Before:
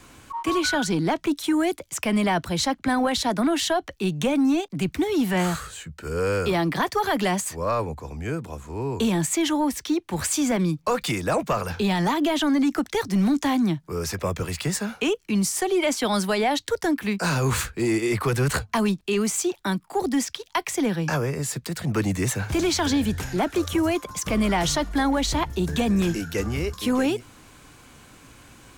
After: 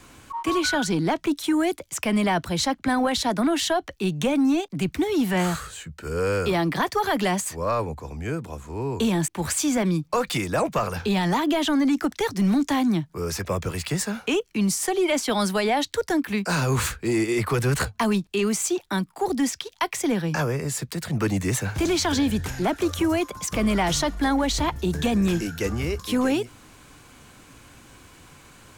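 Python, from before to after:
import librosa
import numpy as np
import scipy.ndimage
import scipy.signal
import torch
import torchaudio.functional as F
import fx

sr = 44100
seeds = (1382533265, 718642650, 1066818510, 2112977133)

y = fx.edit(x, sr, fx.cut(start_s=9.28, length_s=0.74), tone=tone)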